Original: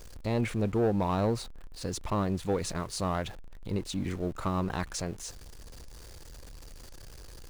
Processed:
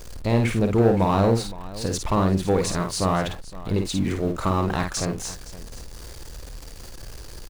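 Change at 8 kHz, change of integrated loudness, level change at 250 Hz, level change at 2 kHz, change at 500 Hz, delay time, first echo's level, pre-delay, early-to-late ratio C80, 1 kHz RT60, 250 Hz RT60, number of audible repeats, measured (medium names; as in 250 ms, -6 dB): +8.5 dB, +8.5 dB, +8.5 dB, +8.5 dB, +8.5 dB, 52 ms, -5.5 dB, no reverb, no reverb, no reverb, no reverb, 2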